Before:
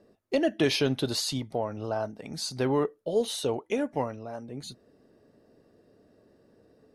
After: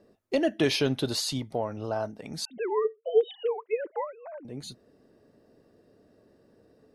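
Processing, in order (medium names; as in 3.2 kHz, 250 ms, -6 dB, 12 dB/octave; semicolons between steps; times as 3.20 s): 2.45–4.45 s: formants replaced by sine waves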